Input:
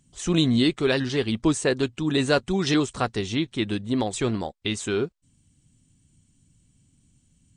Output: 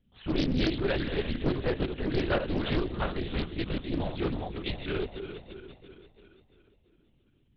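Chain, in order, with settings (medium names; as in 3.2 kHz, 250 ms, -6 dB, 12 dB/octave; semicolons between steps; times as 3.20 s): backward echo that repeats 170 ms, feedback 71%, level -8.5 dB; LPC vocoder at 8 kHz whisper; loudspeaker Doppler distortion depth 0.58 ms; trim -6.5 dB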